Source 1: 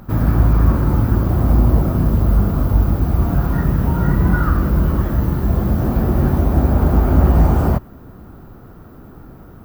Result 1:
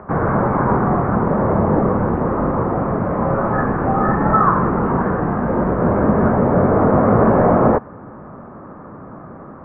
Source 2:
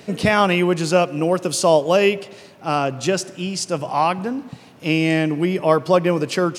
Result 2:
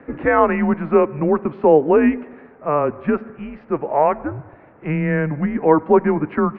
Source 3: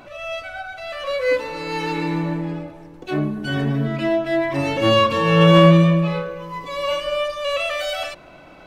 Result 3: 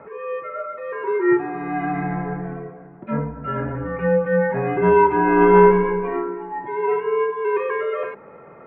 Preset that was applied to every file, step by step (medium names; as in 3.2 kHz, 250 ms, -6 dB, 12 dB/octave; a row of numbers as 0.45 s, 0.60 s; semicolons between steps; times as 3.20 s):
mistuned SSB -150 Hz 330–2000 Hz; peak normalisation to -1.5 dBFS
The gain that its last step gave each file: +11.0 dB, +2.5 dB, +3.0 dB